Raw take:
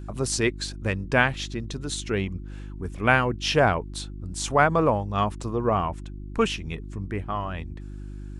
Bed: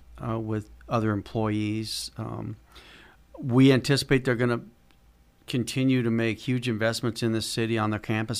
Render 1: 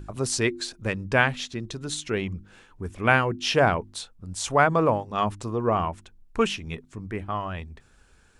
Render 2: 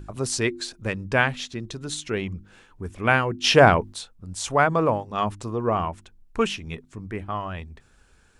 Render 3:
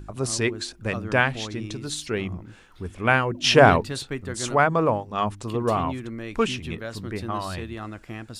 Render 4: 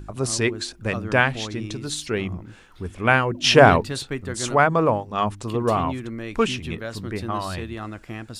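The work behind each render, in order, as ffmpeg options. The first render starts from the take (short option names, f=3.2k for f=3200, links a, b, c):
-af "bandreject=f=50:t=h:w=4,bandreject=f=100:t=h:w=4,bandreject=f=150:t=h:w=4,bandreject=f=200:t=h:w=4,bandreject=f=250:t=h:w=4,bandreject=f=300:t=h:w=4,bandreject=f=350:t=h:w=4"
-filter_complex "[0:a]asplit=3[a][b][c];[a]atrim=end=3.442[d];[b]atrim=start=3.438:end=3.932,asetpts=PTS-STARTPTS,volume=6dB[e];[c]atrim=start=3.928[f];[d][e]acrossfade=d=0.004:c1=hsin:c2=hsin[g];[g][f]acrossfade=d=0.004:c1=hsin:c2=hsin"
-filter_complex "[1:a]volume=-9.5dB[a];[0:a][a]amix=inputs=2:normalize=0"
-af "volume=2dB,alimiter=limit=-1dB:level=0:latency=1"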